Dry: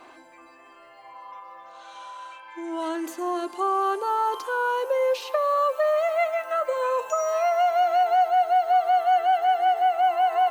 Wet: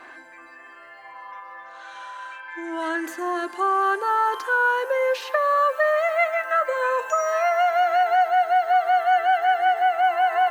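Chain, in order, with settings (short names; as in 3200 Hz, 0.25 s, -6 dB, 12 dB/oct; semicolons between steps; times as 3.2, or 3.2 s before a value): bell 1700 Hz +14.5 dB 0.56 oct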